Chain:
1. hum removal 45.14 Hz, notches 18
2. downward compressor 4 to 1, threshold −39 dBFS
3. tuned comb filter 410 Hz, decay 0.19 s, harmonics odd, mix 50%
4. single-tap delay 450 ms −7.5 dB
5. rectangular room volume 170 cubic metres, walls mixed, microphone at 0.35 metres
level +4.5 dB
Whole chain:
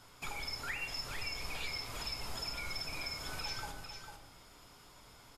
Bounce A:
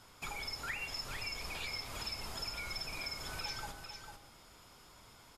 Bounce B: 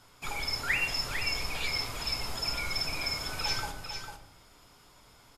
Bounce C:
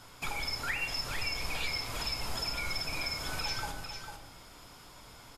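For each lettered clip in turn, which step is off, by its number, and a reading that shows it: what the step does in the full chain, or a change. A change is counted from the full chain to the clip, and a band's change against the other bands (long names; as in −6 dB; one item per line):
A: 5, echo-to-direct ratio −5.0 dB to −7.5 dB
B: 2, average gain reduction 5.0 dB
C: 3, change in integrated loudness +5.5 LU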